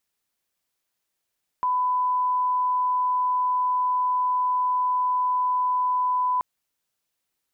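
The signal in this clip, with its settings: line-up tone -20 dBFS 4.78 s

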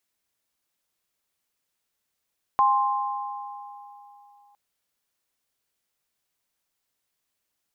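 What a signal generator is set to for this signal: sine partials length 1.96 s, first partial 817 Hz, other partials 1.05 kHz, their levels 3.5 dB, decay 3.27 s, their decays 2.42 s, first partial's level -20 dB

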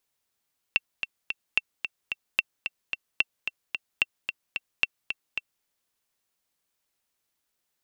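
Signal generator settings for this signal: metronome 221 bpm, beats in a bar 3, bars 6, 2.7 kHz, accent 8 dB -7.5 dBFS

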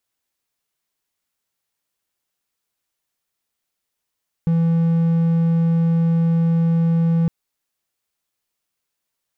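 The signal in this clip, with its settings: tone triangle 166 Hz -12 dBFS 2.81 s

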